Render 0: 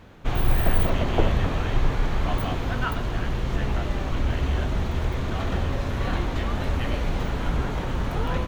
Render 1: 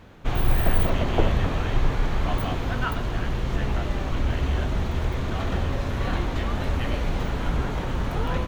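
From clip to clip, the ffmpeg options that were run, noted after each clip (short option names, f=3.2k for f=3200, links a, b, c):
-af anull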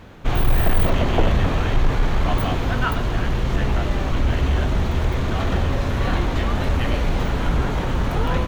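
-af "asoftclip=type=tanh:threshold=-13dB,volume=5.5dB"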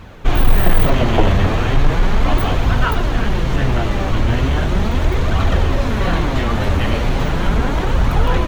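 -af "flanger=delay=0.7:depth=9.7:regen=48:speed=0.37:shape=triangular,volume=8.5dB"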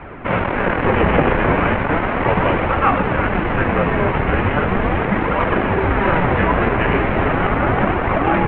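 -af "apsyclip=15.5dB,highpass=f=190:t=q:w=0.5412,highpass=f=190:t=q:w=1.307,lowpass=f=2.6k:t=q:w=0.5176,lowpass=f=2.6k:t=q:w=0.7071,lowpass=f=2.6k:t=q:w=1.932,afreqshift=-170,volume=-7dB"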